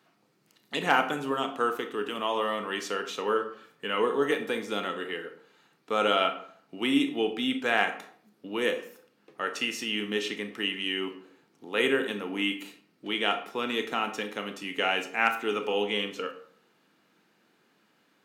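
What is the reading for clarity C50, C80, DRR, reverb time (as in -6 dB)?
10.5 dB, 14.0 dB, 7.5 dB, 0.55 s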